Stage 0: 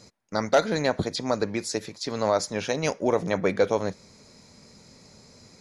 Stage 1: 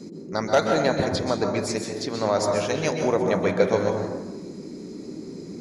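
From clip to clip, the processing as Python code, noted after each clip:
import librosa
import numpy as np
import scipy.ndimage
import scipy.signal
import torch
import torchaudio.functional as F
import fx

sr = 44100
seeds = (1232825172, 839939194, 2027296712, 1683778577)

y = fx.dmg_noise_band(x, sr, seeds[0], low_hz=160.0, high_hz=410.0, level_db=-39.0)
y = fx.rev_plate(y, sr, seeds[1], rt60_s=1.1, hf_ratio=0.4, predelay_ms=115, drr_db=2.5)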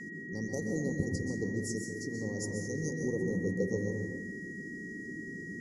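y = scipy.signal.sosfilt(scipy.signal.cheby1(3, 1.0, [550.0, 5700.0], 'bandstop', fs=sr, output='sos'), x)
y = fx.fixed_phaser(y, sr, hz=1500.0, stages=4)
y = y + 10.0 ** (-40.0 / 20.0) * np.sin(2.0 * np.pi * 1900.0 * np.arange(len(y)) / sr)
y = F.gain(torch.from_numpy(y), -3.5).numpy()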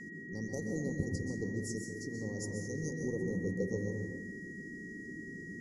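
y = fx.low_shelf(x, sr, hz=65.0, db=7.0)
y = F.gain(torch.from_numpy(y), -3.5).numpy()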